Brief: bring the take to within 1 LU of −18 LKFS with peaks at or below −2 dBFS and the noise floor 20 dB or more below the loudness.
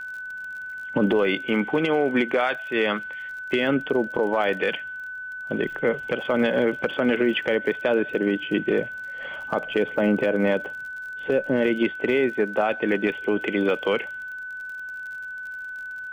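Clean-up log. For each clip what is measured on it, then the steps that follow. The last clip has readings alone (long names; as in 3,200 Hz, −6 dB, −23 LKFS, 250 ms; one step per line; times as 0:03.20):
crackle rate 41 per second; interfering tone 1,500 Hz; level of the tone −32 dBFS; integrated loudness −24.5 LKFS; sample peak −10.0 dBFS; target loudness −18.0 LKFS
→ click removal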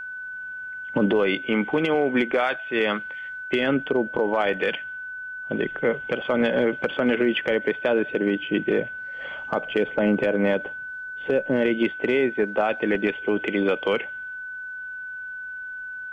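crackle rate 0.062 per second; interfering tone 1,500 Hz; level of the tone −32 dBFS
→ notch filter 1,500 Hz, Q 30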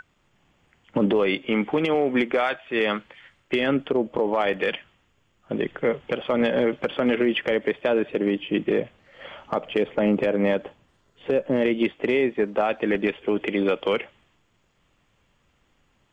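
interfering tone none found; integrated loudness −24.0 LKFS; sample peak −11.0 dBFS; target loudness −18.0 LKFS
→ level +6 dB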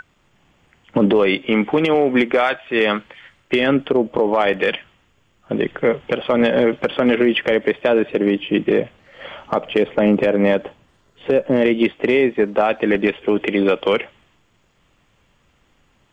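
integrated loudness −18.0 LKFS; sample peak −5.0 dBFS; background noise floor −60 dBFS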